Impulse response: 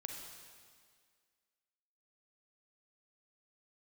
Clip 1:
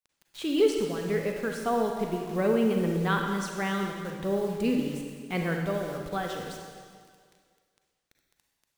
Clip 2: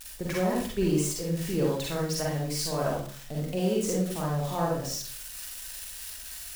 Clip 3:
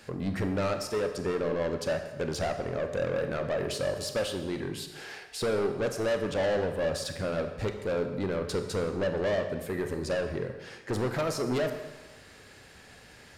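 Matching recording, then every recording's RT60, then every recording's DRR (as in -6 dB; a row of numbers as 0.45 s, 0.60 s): 1; 1.9 s, 0.45 s, 1.2 s; 2.0 dB, -4.0 dB, 6.5 dB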